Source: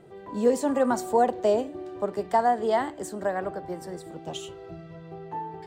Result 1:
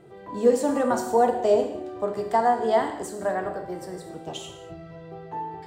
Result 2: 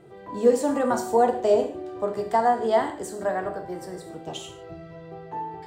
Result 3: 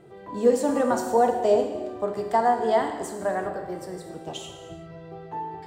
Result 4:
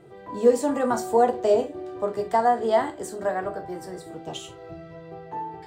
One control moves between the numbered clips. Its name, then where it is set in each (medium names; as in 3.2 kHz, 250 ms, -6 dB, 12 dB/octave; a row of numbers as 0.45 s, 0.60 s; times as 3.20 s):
gated-style reverb, gate: 280 ms, 180 ms, 420 ms, 90 ms